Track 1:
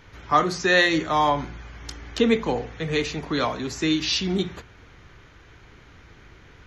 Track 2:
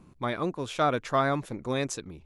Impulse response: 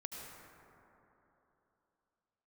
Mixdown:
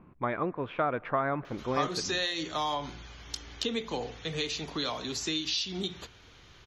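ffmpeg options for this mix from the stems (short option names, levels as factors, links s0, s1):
-filter_complex "[0:a]highshelf=f=2600:t=q:w=1.5:g=8.5,acompressor=threshold=0.0708:ratio=4,adelay=1450,volume=0.376[s0];[1:a]lowpass=f=2500:w=0.5412,lowpass=f=2500:w=1.3066,acompressor=threshold=0.0501:ratio=6,volume=0.75,asplit=2[s1][s2];[s2]volume=0.106[s3];[2:a]atrim=start_sample=2205[s4];[s3][s4]afir=irnorm=-1:irlink=0[s5];[s0][s1][s5]amix=inputs=3:normalize=0,equalizer=f=1100:w=0.37:g=4"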